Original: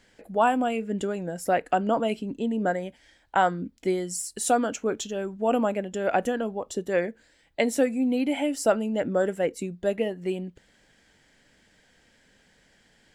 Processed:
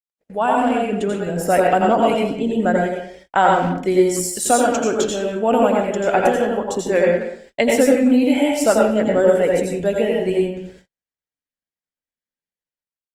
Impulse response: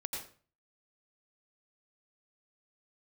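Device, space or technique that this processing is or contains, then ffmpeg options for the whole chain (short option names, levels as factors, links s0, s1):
speakerphone in a meeting room: -filter_complex "[1:a]atrim=start_sample=2205[s0];[0:a][s0]afir=irnorm=-1:irlink=0,asplit=2[s1][s2];[s2]adelay=180,highpass=300,lowpass=3400,asoftclip=type=hard:threshold=0.119,volume=0.251[s3];[s1][s3]amix=inputs=2:normalize=0,dynaudnorm=f=140:g=9:m=2,agate=range=0.00447:threshold=0.00501:ratio=16:detection=peak,volume=1.33" -ar 48000 -c:a libopus -b:a 24k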